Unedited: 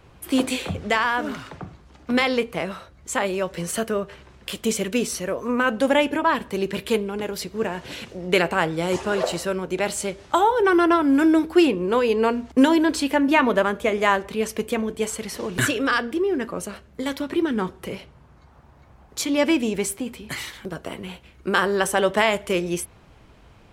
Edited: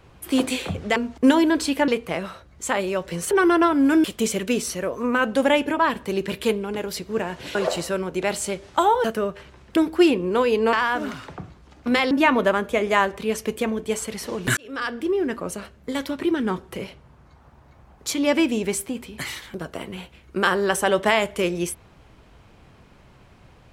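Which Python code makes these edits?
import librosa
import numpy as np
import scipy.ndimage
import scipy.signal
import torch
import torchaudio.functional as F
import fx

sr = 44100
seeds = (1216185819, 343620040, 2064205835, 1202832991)

y = fx.edit(x, sr, fx.swap(start_s=0.96, length_s=1.38, other_s=12.3, other_length_s=0.92),
    fx.swap(start_s=3.77, length_s=0.72, other_s=10.6, other_length_s=0.73),
    fx.cut(start_s=8.0, length_s=1.11),
    fx.fade_in_span(start_s=15.68, length_s=0.53), tone=tone)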